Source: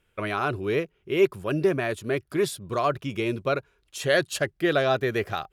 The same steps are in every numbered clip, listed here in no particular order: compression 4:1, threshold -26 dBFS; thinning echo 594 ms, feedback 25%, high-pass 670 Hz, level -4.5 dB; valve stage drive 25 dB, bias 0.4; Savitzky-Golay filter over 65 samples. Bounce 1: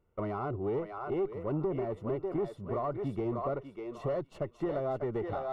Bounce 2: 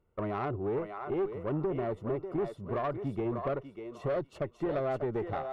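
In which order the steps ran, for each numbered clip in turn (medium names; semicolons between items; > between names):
thinning echo > compression > valve stage > Savitzky-Golay filter; Savitzky-Golay filter > compression > thinning echo > valve stage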